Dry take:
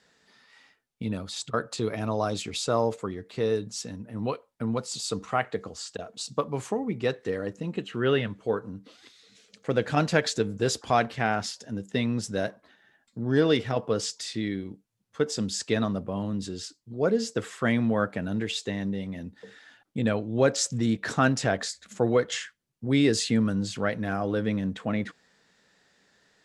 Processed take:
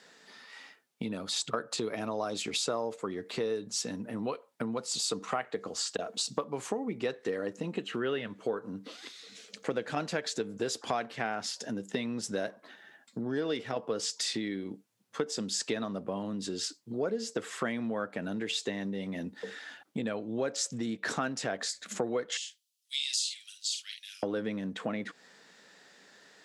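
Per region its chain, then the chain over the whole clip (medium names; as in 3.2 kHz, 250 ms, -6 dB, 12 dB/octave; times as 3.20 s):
22.37–24.23 s: steep high-pass 3 kHz + doubling 49 ms -6 dB
whole clip: compression 6:1, threshold -36 dBFS; high-pass 220 Hz 12 dB/octave; trim +7 dB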